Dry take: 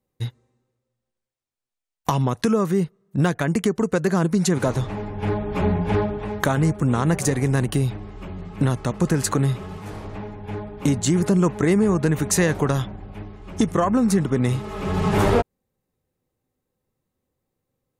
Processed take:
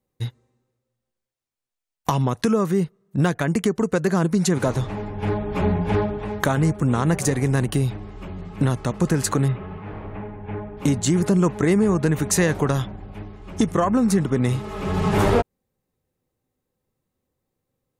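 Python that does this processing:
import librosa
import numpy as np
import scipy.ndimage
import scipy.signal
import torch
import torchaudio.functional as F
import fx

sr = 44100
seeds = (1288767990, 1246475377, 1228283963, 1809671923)

y = fx.lowpass(x, sr, hz=2700.0, slope=24, at=(9.48, 10.77))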